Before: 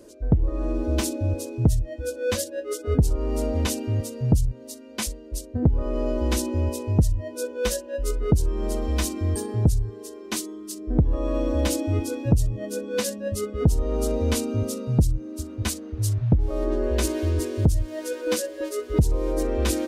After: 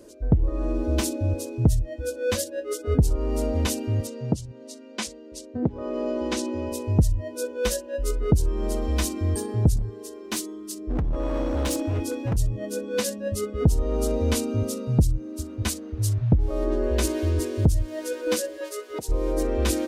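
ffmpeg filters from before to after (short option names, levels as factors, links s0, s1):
-filter_complex "[0:a]asettb=1/sr,asplit=3[s0][s1][s2];[s0]atrim=end=4.074[s3];[s1]atrim=start=4.07:end=6.72,asetpts=PTS-STARTPTS,afade=t=in:d=0.004:c=qsin,afade=t=out:st=2.646:d=0.004:c=qsin,highpass=180,lowpass=6900[s4];[s2]atrim=start=6.716[s5];[s3][s4]acrossfade=d=0.004:c1=hsin:c2=qsin[s6];[s6][s5]acrossfade=d=0.004:c1=qsin:c2=hsin,asettb=1/sr,asplit=3[s7][s8][s9];[s7]atrim=end=9.764[s10];[s8]atrim=start=9.76:end=12.37,asetpts=PTS-STARTPTS,afade=t=in:d=0.004:c=qsin,afade=t=out:st=2.606:d=0.004:c=qsin,asoftclip=type=hard:threshold=0.0841[s11];[s9]atrim=start=12.366[s12];[s10][s11]acrossfade=d=0.004:c1=hsin:c2=qsin[s13];[s13][s12]acrossfade=d=0.004:c1=qsin:c2=hsin,asplit=3[s14][s15][s16];[s14]afade=t=out:st=18.57:d=0.02[s17];[s15]highpass=550,afade=t=in:st=18.57:d=0.02,afade=t=out:st=19.08:d=0.02[s18];[s16]afade=t=in:st=19.08:d=0.02[s19];[s17][s18][s19]amix=inputs=3:normalize=0"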